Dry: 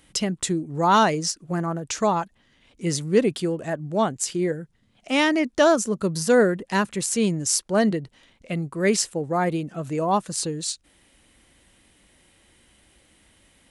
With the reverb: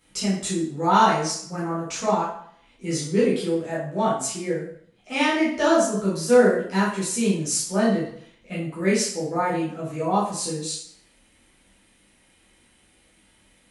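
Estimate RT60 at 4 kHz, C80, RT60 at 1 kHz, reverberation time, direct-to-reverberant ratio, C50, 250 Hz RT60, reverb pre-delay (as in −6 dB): 0.55 s, 7.0 dB, 0.65 s, 0.60 s, −10.0 dB, 3.0 dB, 0.55 s, 8 ms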